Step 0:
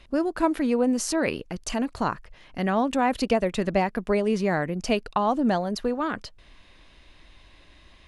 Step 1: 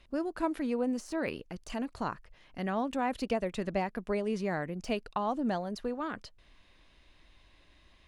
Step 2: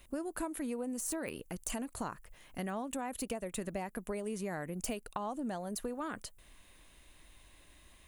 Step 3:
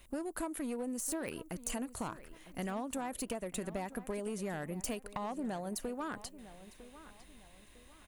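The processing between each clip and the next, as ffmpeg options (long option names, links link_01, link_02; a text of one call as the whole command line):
ffmpeg -i in.wav -af "deesser=0.7,volume=-8.5dB" out.wav
ffmpeg -i in.wav -af "acompressor=threshold=-36dB:ratio=6,aexciter=amount=8.8:drive=4:freq=7100,volume=1dB" out.wav
ffmpeg -i in.wav -filter_complex "[0:a]acrossover=split=3500[link_01][link_02];[link_01]aeval=exprs='clip(val(0),-1,0.015)':channel_layout=same[link_03];[link_03][link_02]amix=inputs=2:normalize=0,asplit=2[link_04][link_05];[link_05]adelay=953,lowpass=frequency=4600:poles=1,volume=-15.5dB,asplit=2[link_06][link_07];[link_07]adelay=953,lowpass=frequency=4600:poles=1,volume=0.39,asplit=2[link_08][link_09];[link_09]adelay=953,lowpass=frequency=4600:poles=1,volume=0.39[link_10];[link_04][link_06][link_08][link_10]amix=inputs=4:normalize=0" out.wav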